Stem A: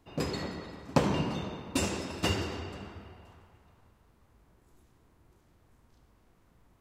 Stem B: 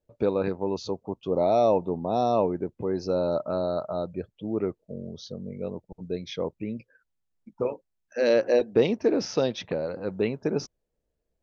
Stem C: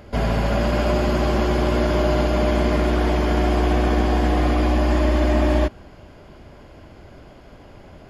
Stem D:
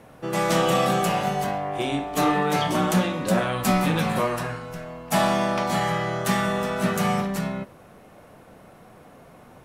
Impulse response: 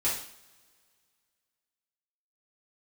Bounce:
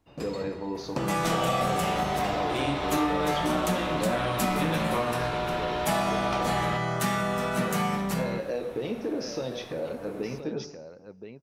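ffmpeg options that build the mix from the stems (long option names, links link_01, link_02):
-filter_complex "[0:a]volume=-7.5dB,asplit=2[link_01][link_02];[link_02]volume=-13dB[link_03];[1:a]alimiter=limit=-18dB:level=0:latency=1,volume=-8dB,asplit=3[link_04][link_05][link_06];[link_05]volume=-7dB[link_07];[link_06]volume=-6.5dB[link_08];[2:a]equalizer=frequency=2900:width_type=o:width=1.2:gain=11.5,aeval=exprs='val(0)*sin(2*PI*670*n/s)':channel_layout=same,adelay=1100,volume=-7dB[link_09];[3:a]adelay=750,volume=-0.5dB,asplit=2[link_10][link_11];[link_11]volume=-12.5dB[link_12];[4:a]atrim=start_sample=2205[link_13];[link_03][link_07][link_12]amix=inputs=3:normalize=0[link_14];[link_14][link_13]afir=irnorm=-1:irlink=0[link_15];[link_08]aecho=0:1:1024:1[link_16];[link_01][link_04][link_09][link_10][link_15][link_16]amix=inputs=6:normalize=0,acompressor=threshold=-26dB:ratio=2.5"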